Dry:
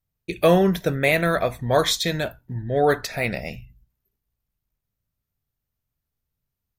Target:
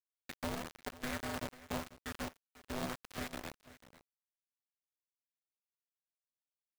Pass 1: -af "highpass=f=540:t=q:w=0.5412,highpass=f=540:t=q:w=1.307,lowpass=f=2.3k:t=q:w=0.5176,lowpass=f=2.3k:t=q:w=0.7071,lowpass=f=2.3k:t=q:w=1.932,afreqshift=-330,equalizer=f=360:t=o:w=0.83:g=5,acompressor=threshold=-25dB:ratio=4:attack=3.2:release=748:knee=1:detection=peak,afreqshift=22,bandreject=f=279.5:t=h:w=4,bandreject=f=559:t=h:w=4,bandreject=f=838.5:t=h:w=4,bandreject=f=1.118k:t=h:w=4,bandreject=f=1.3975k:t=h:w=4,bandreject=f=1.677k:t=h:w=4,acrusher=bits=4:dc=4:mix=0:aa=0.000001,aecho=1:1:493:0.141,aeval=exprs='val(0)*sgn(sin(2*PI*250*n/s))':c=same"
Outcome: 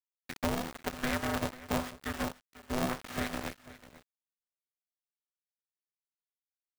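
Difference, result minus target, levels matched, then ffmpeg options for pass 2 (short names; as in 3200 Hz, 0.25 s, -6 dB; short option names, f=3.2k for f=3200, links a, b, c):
compressor: peak gain reduction -8 dB
-af "highpass=f=540:t=q:w=0.5412,highpass=f=540:t=q:w=1.307,lowpass=f=2.3k:t=q:w=0.5176,lowpass=f=2.3k:t=q:w=0.7071,lowpass=f=2.3k:t=q:w=1.932,afreqshift=-330,equalizer=f=360:t=o:w=0.83:g=5,acompressor=threshold=-35.5dB:ratio=4:attack=3.2:release=748:knee=1:detection=peak,afreqshift=22,bandreject=f=279.5:t=h:w=4,bandreject=f=559:t=h:w=4,bandreject=f=838.5:t=h:w=4,bandreject=f=1.118k:t=h:w=4,bandreject=f=1.3975k:t=h:w=4,bandreject=f=1.677k:t=h:w=4,acrusher=bits=4:dc=4:mix=0:aa=0.000001,aecho=1:1:493:0.141,aeval=exprs='val(0)*sgn(sin(2*PI*250*n/s))':c=same"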